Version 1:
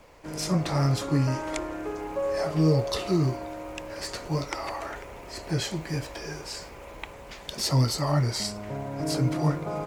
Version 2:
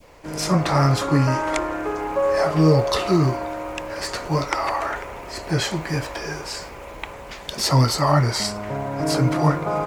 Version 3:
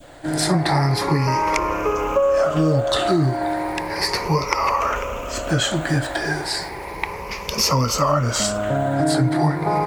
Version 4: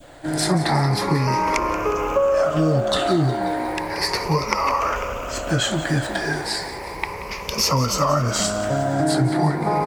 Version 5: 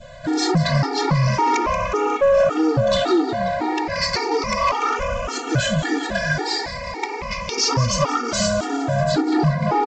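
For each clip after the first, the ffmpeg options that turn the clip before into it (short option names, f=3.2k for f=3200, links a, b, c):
-af "adynamicequalizer=threshold=0.00708:dfrequency=1200:dqfactor=0.71:tfrequency=1200:tqfactor=0.71:attack=5:release=100:ratio=0.375:range=3.5:mode=boostabove:tftype=bell,volume=5dB"
-af "afftfilt=real='re*pow(10,11/40*sin(2*PI*(0.83*log(max(b,1)*sr/1024/100)/log(2)-(0.34)*(pts-256)/sr)))':imag='im*pow(10,11/40*sin(2*PI*(0.83*log(max(b,1)*sr/1024/100)/log(2)-(0.34)*(pts-256)/sr)))':win_size=1024:overlap=0.75,acompressor=threshold=-21dB:ratio=4,volume=5dB"
-filter_complex "[0:a]asplit=8[a][b][c][d][e][f][g][h];[b]adelay=180,afreqshift=58,volume=-14.5dB[i];[c]adelay=360,afreqshift=116,volume=-18.7dB[j];[d]adelay=540,afreqshift=174,volume=-22.8dB[k];[e]adelay=720,afreqshift=232,volume=-27dB[l];[f]adelay=900,afreqshift=290,volume=-31.1dB[m];[g]adelay=1080,afreqshift=348,volume=-35.3dB[n];[h]adelay=1260,afreqshift=406,volume=-39.4dB[o];[a][i][j][k][l][m][n][o]amix=inputs=8:normalize=0,volume=-1dB"
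-af "aresample=16000,asoftclip=type=tanh:threshold=-16.5dB,aresample=44100,afftfilt=real='re*gt(sin(2*PI*1.8*pts/sr)*(1-2*mod(floor(b*sr/1024/240),2)),0)':imag='im*gt(sin(2*PI*1.8*pts/sr)*(1-2*mod(floor(b*sr/1024/240),2)),0)':win_size=1024:overlap=0.75,volume=6.5dB"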